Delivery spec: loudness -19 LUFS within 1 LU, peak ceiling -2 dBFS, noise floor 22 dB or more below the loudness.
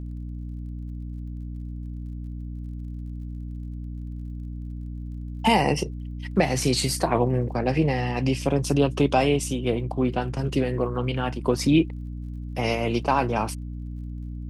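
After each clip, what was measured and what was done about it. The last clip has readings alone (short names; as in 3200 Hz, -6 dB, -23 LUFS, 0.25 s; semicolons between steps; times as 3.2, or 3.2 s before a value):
ticks 38/s; hum 60 Hz; harmonics up to 300 Hz; hum level -31 dBFS; loudness -26.5 LUFS; peak -7.5 dBFS; loudness target -19.0 LUFS
-> de-click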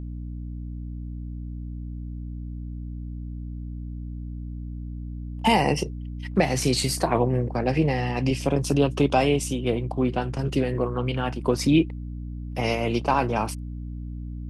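ticks 0/s; hum 60 Hz; harmonics up to 300 Hz; hum level -31 dBFS
-> notches 60/120/180/240/300 Hz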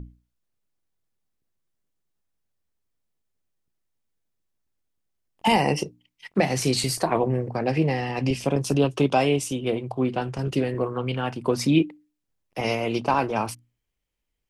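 hum none; loudness -24.5 LUFS; peak -6.5 dBFS; loudness target -19.0 LUFS
-> gain +5.5 dB; limiter -2 dBFS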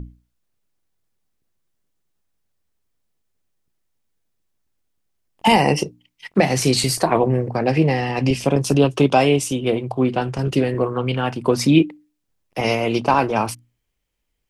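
loudness -19.0 LUFS; peak -2.0 dBFS; noise floor -74 dBFS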